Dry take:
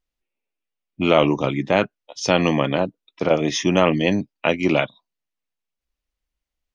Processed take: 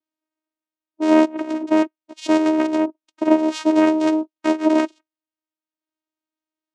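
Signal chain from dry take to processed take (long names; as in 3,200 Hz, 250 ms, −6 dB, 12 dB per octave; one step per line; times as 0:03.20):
0:01.25–0:01.71: compressor whose output falls as the input rises −26 dBFS, ratio −0.5
channel vocoder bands 4, saw 313 Hz
level +2.5 dB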